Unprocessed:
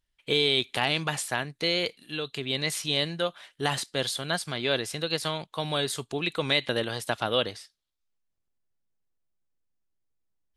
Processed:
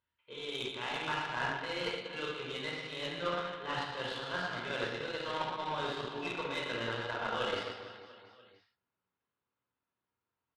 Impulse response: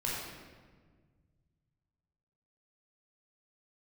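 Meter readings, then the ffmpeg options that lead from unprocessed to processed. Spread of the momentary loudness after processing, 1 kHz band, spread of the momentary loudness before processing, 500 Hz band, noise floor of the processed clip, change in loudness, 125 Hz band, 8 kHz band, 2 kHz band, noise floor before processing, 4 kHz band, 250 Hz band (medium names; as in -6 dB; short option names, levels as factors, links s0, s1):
5 LU, -2.5 dB, 7 LU, -8.0 dB, under -85 dBFS, -8.5 dB, -11.0 dB, -19.0 dB, -6.0 dB, -79 dBFS, -12.0 dB, -9.5 dB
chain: -filter_complex "[0:a]areverse,acompressor=threshold=0.01:ratio=10,areverse,highpass=120,equalizer=f=150:t=q:w=4:g=-9,equalizer=f=910:t=q:w=4:g=7,equalizer=f=1300:t=q:w=4:g=10,lowpass=f=3700:w=0.5412,lowpass=f=3700:w=1.3066,aecho=1:1:120|270|457.5|691.9|984.8:0.631|0.398|0.251|0.158|0.1[s0];[1:a]atrim=start_sample=2205,afade=t=out:st=0.16:d=0.01,atrim=end_sample=7497[s1];[s0][s1]afir=irnorm=-1:irlink=0,aeval=exprs='0.0708*(cos(1*acos(clip(val(0)/0.0708,-1,1)))-cos(1*PI/2))+0.00398*(cos(2*acos(clip(val(0)/0.0708,-1,1)))-cos(2*PI/2))+0.00447*(cos(7*acos(clip(val(0)/0.0708,-1,1)))-cos(7*PI/2))':c=same,volume=1.41"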